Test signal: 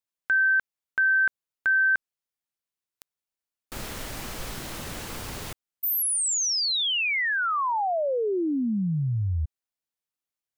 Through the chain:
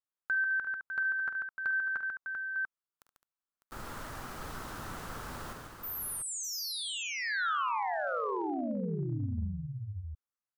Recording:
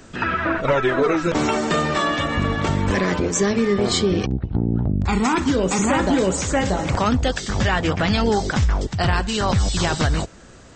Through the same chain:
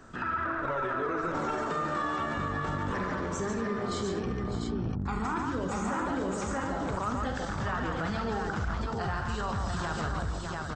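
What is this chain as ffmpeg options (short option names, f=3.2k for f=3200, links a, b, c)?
-filter_complex "[0:a]firequalizer=gain_entry='entry(550,0);entry(1300,8);entry(2200,-5)':delay=0.05:min_phase=1,asplit=2[a][b];[b]aecho=0:1:48|73|143|211|602|692:0.299|0.251|0.531|0.188|0.251|0.501[c];[a][c]amix=inputs=2:normalize=0,acompressor=threshold=-19dB:ratio=3:attack=0.21:release=133:knee=6:detection=peak,volume=-8.5dB"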